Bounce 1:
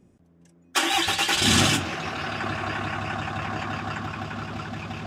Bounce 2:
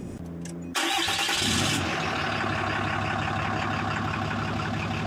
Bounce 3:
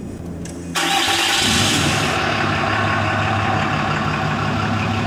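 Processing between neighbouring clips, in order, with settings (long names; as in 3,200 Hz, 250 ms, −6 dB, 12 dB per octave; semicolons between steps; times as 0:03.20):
envelope flattener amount 70%; level −6.5 dB
reverb whose tail is shaped and stops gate 420 ms flat, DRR 1.5 dB; level +6.5 dB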